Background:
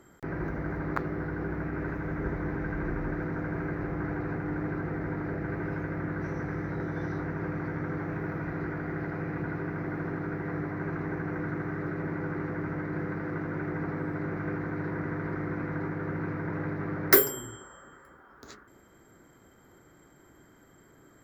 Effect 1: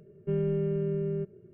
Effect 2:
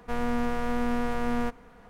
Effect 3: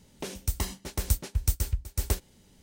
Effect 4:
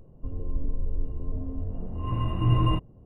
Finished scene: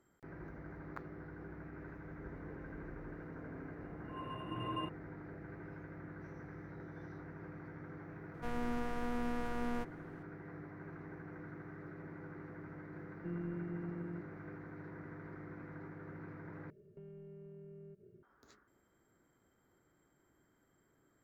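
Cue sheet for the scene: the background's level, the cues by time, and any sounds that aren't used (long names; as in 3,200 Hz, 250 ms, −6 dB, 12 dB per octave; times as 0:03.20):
background −16 dB
0:02.10: mix in 4 −9.5 dB + high-pass filter 300 Hz
0:08.34: mix in 2 −10 dB
0:12.97: mix in 1 −11.5 dB + phases set to zero 173 Hz
0:16.70: overwrite with 1 −8 dB + downward compressor, threshold −43 dBFS
not used: 3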